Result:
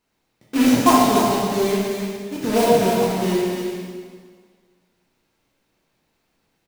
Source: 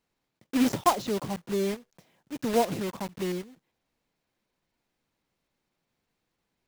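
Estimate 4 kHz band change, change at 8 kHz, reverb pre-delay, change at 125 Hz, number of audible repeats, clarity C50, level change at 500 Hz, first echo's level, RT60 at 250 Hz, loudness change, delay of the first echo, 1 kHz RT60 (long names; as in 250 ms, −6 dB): +11.0 dB, +11.0 dB, 5 ms, +10.0 dB, 1, −2.5 dB, +11.0 dB, −5.5 dB, 1.7 s, +10.0 dB, 292 ms, 1.7 s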